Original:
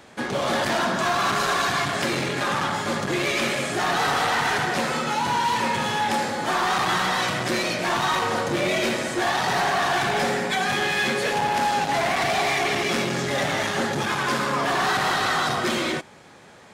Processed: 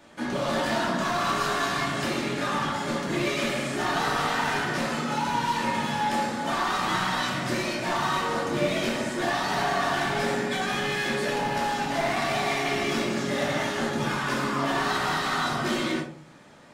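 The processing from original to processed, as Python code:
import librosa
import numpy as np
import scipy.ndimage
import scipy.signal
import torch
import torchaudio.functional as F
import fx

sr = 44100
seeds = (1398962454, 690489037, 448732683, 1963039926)

y = fx.room_shoebox(x, sr, seeds[0], volume_m3=310.0, walls='furnished', distance_m=2.6)
y = y * 10.0 ** (-8.5 / 20.0)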